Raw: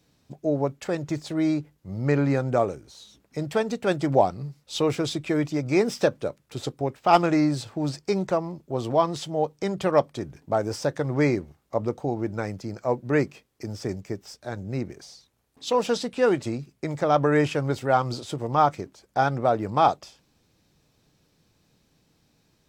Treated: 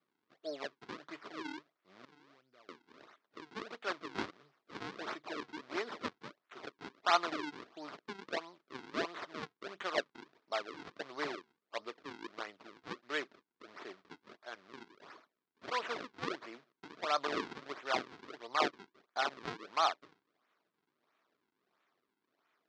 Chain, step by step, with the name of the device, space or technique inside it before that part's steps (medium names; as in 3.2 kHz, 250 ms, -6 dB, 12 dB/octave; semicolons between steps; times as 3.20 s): 2.05–2.69 s: amplifier tone stack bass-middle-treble 10-0-1; high-pass 1.1 kHz 6 dB/octave; circuit-bent sampling toy (decimation with a swept rate 42×, swing 160% 1.5 Hz; cabinet simulation 410–4900 Hz, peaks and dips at 520 Hz -7 dB, 820 Hz -6 dB, 1.2 kHz +3 dB, 2.8 kHz -3 dB); trim -4 dB